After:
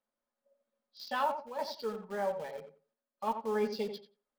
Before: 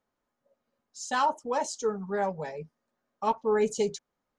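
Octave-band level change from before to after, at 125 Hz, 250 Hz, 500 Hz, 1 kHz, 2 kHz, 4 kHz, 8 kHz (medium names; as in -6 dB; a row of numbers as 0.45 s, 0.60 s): -9.0 dB, -5.5 dB, -6.5 dB, -6.0 dB, -5.5 dB, -3.5 dB, -18.5 dB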